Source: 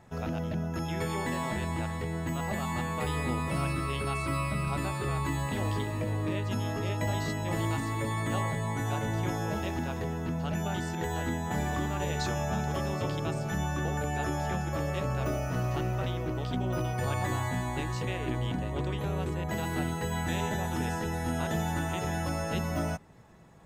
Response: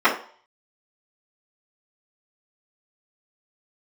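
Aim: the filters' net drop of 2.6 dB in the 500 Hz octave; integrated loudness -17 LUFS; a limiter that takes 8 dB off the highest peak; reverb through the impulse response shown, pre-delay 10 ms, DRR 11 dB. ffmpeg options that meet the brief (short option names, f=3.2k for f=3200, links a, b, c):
-filter_complex "[0:a]equalizer=f=500:t=o:g=-3.5,alimiter=level_in=2.5dB:limit=-24dB:level=0:latency=1,volume=-2.5dB,asplit=2[a][b];[1:a]atrim=start_sample=2205,adelay=10[c];[b][c]afir=irnorm=-1:irlink=0,volume=-33dB[d];[a][d]amix=inputs=2:normalize=0,volume=18dB"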